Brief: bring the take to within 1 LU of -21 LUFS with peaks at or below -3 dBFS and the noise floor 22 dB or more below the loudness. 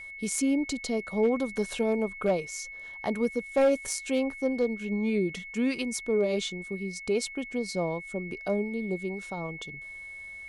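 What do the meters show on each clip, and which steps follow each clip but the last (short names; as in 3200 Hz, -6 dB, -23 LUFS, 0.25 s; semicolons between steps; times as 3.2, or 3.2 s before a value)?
clipped 0.2%; flat tops at -17.5 dBFS; steady tone 2200 Hz; tone level -40 dBFS; loudness -29.5 LUFS; peak -17.5 dBFS; loudness target -21.0 LUFS
-> clip repair -17.5 dBFS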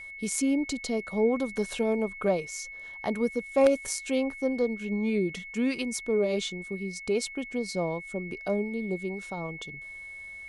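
clipped 0.0%; steady tone 2200 Hz; tone level -40 dBFS
-> notch 2200 Hz, Q 30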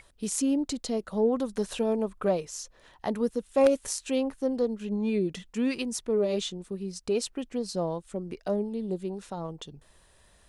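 steady tone none; loudness -29.5 LUFS; peak -8.5 dBFS; loudness target -21.0 LUFS
-> gain +8.5 dB; limiter -3 dBFS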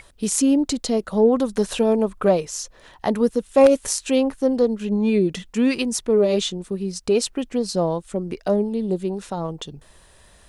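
loudness -21.5 LUFS; peak -3.0 dBFS; noise floor -52 dBFS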